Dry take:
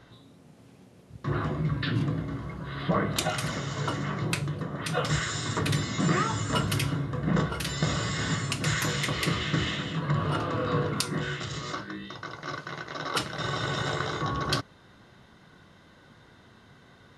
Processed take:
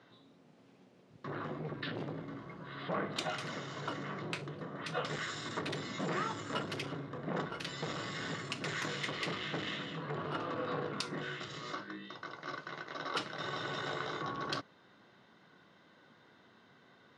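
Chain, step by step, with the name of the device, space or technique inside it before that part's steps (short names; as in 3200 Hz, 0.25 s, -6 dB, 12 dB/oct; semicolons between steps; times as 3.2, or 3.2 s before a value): public-address speaker with an overloaded transformer (core saturation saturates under 970 Hz; BPF 200–5100 Hz); gain -6 dB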